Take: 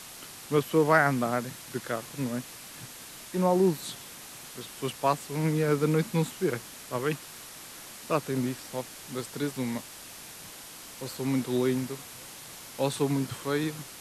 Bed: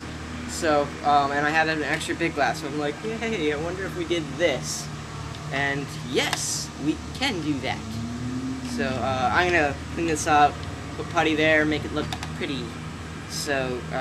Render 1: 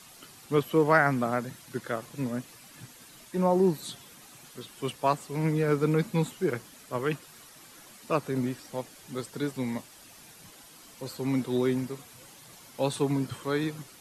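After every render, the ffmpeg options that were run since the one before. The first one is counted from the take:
ffmpeg -i in.wav -af "afftdn=noise_reduction=9:noise_floor=-45" out.wav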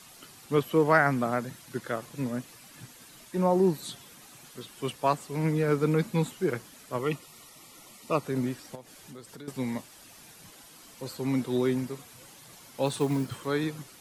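ffmpeg -i in.wav -filter_complex "[0:a]asettb=1/sr,asplit=3[link_01][link_02][link_03];[link_01]atrim=end=6.994[link_04];[link_02]atrim=start=6.99:end=8.25,asetpts=PTS-STARTPTS,afade=type=in:duration=0.004:curve=qsin,afade=type=out:start_time=1.256:duration=0.004:curve=qsin,asuperstop=centerf=1600:order=12:qfactor=4.6[link_05];[link_03]atrim=start=8.246[link_06];[link_04][link_05]acrossfade=duration=0.004:curve1=hsin:curve2=qsin[link_07];[link_07][link_06]acrossfade=duration=0.004:curve1=qsin:curve2=hsin,asettb=1/sr,asplit=3[link_08][link_09][link_10];[link_08]atrim=end=8.754[link_11];[link_09]atrim=start=8.75:end=9.48,asetpts=PTS-STARTPTS,afade=type=in:duration=0.004:curve=qsin,afade=type=out:start_time=0.726:duration=0.004:curve=qsin,acompressor=threshold=-43dB:ratio=4:attack=3.2:release=140:knee=1:detection=peak[link_12];[link_10]atrim=start=9.476[link_13];[link_11][link_12]acrossfade=duration=0.004:curve1=hsin:curve2=qsin[link_14];[link_14][link_13]acrossfade=duration=0.004:curve1=qsin:curve2=hsin,asettb=1/sr,asplit=3[link_15][link_16][link_17];[link_15]atrim=end=12.864[link_18];[link_16]atrim=start=12.86:end=13.46,asetpts=PTS-STARTPTS,afade=type=in:duration=0.004:curve=qsin,afade=type=out:start_time=0.596:duration=0.004:curve=qsin,acrusher=bits=6:mode=log:mix=0:aa=0.000001[link_19];[link_17]atrim=start=13.456[link_20];[link_18][link_19]acrossfade=duration=0.004:curve1=hsin:curve2=qsin[link_21];[link_21][link_20]acrossfade=duration=0.004:curve1=qsin:curve2=hsin" out.wav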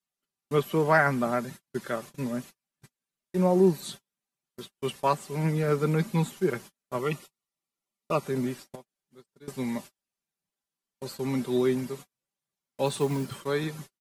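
ffmpeg -i in.wav -af "agate=range=-41dB:threshold=-42dB:ratio=16:detection=peak,aecho=1:1:5.1:0.43" out.wav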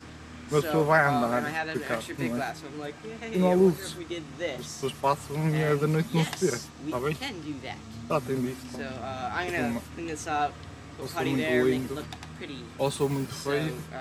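ffmpeg -i in.wav -i bed.wav -filter_complex "[1:a]volume=-10dB[link_01];[0:a][link_01]amix=inputs=2:normalize=0" out.wav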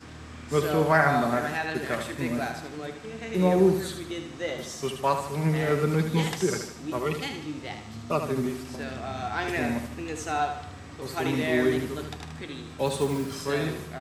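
ffmpeg -i in.wav -af "aecho=1:1:76|152|228|304|380:0.422|0.198|0.0932|0.0438|0.0206" out.wav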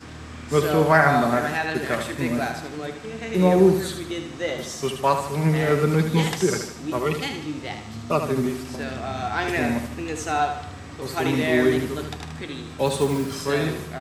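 ffmpeg -i in.wav -af "volume=4.5dB,alimiter=limit=-3dB:level=0:latency=1" out.wav

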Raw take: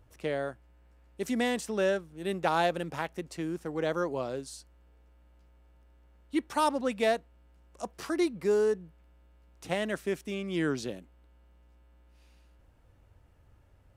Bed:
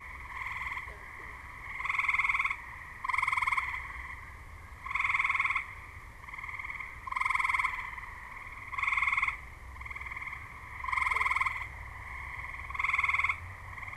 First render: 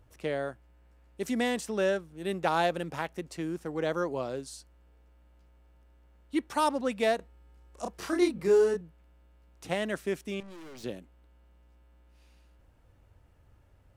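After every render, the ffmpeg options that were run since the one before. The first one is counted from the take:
ffmpeg -i in.wav -filter_complex "[0:a]asettb=1/sr,asplit=3[link_01][link_02][link_03];[link_01]atrim=end=7.164[link_04];[link_02]atrim=start=7.16:end=8.81,asetpts=PTS-STARTPTS,afade=type=in:duration=0.004:curve=qsin,afade=type=out:start_time=1.646:duration=0.004:curve=qsin,asplit=2[link_05][link_06];[link_06]adelay=31,volume=-3dB[link_07];[link_05][link_07]amix=inputs=2:normalize=0,atrim=end_sample=72765[link_08];[link_03]atrim=start=8.806[link_09];[link_04][link_08]acrossfade=duration=0.004:curve1=hsin:curve2=qsin[link_10];[link_10][link_09]acrossfade=duration=0.004:curve1=qsin:curve2=hsin,asettb=1/sr,asplit=3[link_11][link_12][link_13];[link_11]atrim=end=10.404[link_14];[link_12]atrim=start=10.4:end=10.84,asetpts=PTS-STARTPTS,afade=type=in:duration=0.004:curve=qsin,afade=type=out:start_time=0.436:duration=0.004:curve=qsin,aeval=exprs='(tanh(200*val(0)+0.55)-tanh(0.55))/200':channel_layout=same[link_15];[link_13]atrim=start=10.836[link_16];[link_14][link_15]acrossfade=duration=0.004:curve1=hsin:curve2=qsin[link_17];[link_17][link_16]acrossfade=duration=0.004:curve1=qsin:curve2=hsin" out.wav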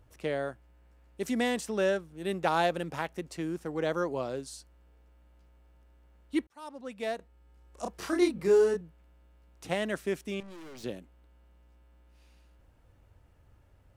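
ffmpeg -i in.wav -filter_complex "[0:a]asplit=2[link_01][link_02];[link_01]atrim=end=6.47,asetpts=PTS-STARTPTS,afade=type=out:start_time=6.466:duration=0.004:curve=hsin[link_03];[link_02]atrim=start=6.47,asetpts=PTS-STARTPTS,afade=type=in:duration=1.4[link_04];[link_03][link_04]concat=n=2:v=0:a=1" out.wav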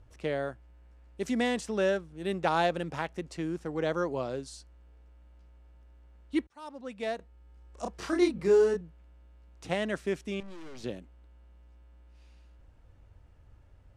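ffmpeg -i in.wav -af "lowpass=8100,lowshelf=frequency=79:gain=7.5" out.wav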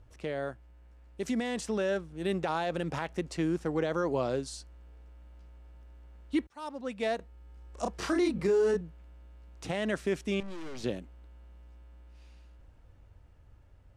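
ffmpeg -i in.wav -af "alimiter=limit=-24dB:level=0:latency=1:release=51,dynaudnorm=framelen=220:gausssize=17:maxgain=4dB" out.wav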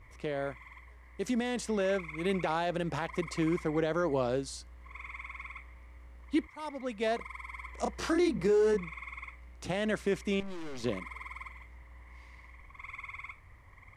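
ffmpeg -i in.wav -i bed.wav -filter_complex "[1:a]volume=-15.5dB[link_01];[0:a][link_01]amix=inputs=2:normalize=0" out.wav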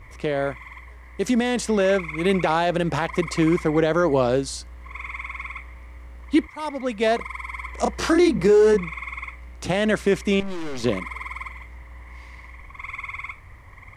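ffmpeg -i in.wav -af "volume=10.5dB" out.wav

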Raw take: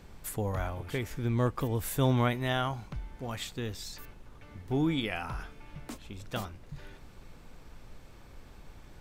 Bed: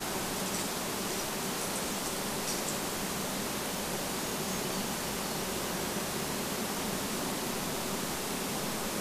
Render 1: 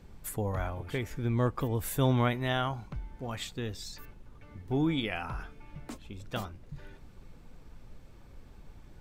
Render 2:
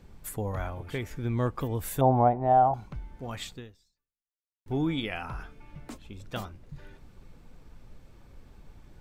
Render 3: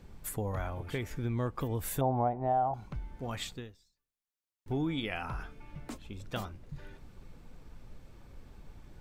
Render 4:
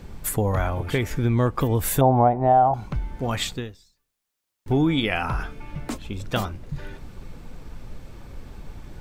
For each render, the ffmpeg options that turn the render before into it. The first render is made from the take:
ffmpeg -i in.wav -af "afftdn=noise_reduction=6:noise_floor=-52" out.wav
ffmpeg -i in.wav -filter_complex "[0:a]asettb=1/sr,asplit=3[link_01][link_02][link_03];[link_01]atrim=end=2.014[link_04];[link_02]atrim=start=2.01:end=2.74,asetpts=PTS-STARTPTS,afade=type=in:duration=0.004:curve=qsin,afade=type=out:start_time=0.726:duration=0.004:curve=qsin,lowpass=frequency=760:width_type=q:width=7.6[link_05];[link_03]atrim=start=2.736[link_06];[link_04][link_05]acrossfade=duration=0.004:curve1=hsin:curve2=qsin[link_07];[link_07][link_06]acrossfade=duration=0.004:curve1=qsin:curve2=hsin,asplit=2[link_08][link_09];[link_08]atrim=end=4.66,asetpts=PTS-STARTPTS,afade=type=out:start_time=3.53:duration=1.13:curve=exp[link_10];[link_09]atrim=start=4.66,asetpts=PTS-STARTPTS,afade=type=in:duration=0.004:curve=hsin[link_11];[link_10][link_11]concat=n=2:v=0:a=1" out.wav
ffmpeg -i in.wav -af "acompressor=threshold=-32dB:ratio=2" out.wav
ffmpeg -i in.wav -af "volume=12dB" out.wav

